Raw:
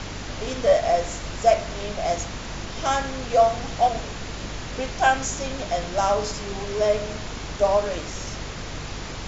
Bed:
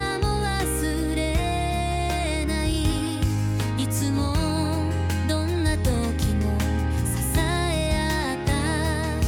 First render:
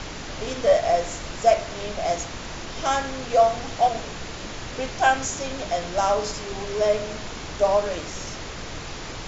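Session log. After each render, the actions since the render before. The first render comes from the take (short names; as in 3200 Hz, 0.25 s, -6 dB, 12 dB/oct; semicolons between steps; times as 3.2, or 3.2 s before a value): notches 50/100/150/200/250 Hz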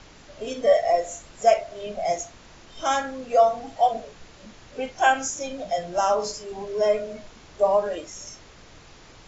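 noise print and reduce 14 dB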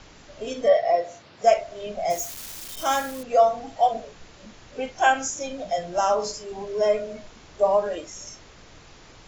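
0.68–1.44 elliptic band-pass 100–4800 Hz; 2.1–3.23 switching spikes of -28 dBFS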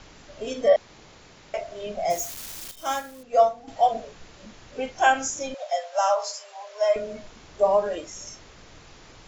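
0.76–1.54 room tone; 2.71–3.68 upward expander, over -33 dBFS; 5.54–6.96 steep high-pass 520 Hz 72 dB/oct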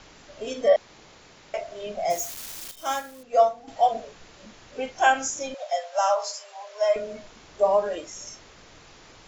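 low shelf 190 Hz -5.5 dB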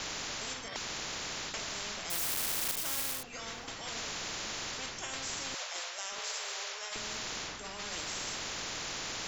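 reverse; compressor, threshold -30 dBFS, peak gain reduction 16 dB; reverse; spectral compressor 10:1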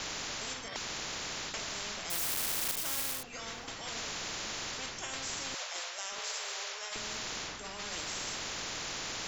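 nothing audible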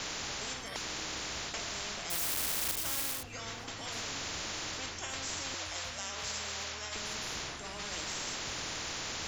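add bed -29.5 dB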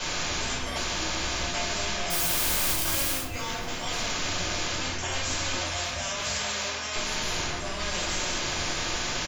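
feedback echo 0.285 s, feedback 57%, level -24 dB; shoebox room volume 290 m³, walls furnished, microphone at 5.1 m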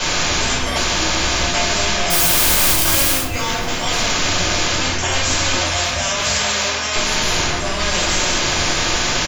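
gain +11.5 dB; limiter -2 dBFS, peak gain reduction 1 dB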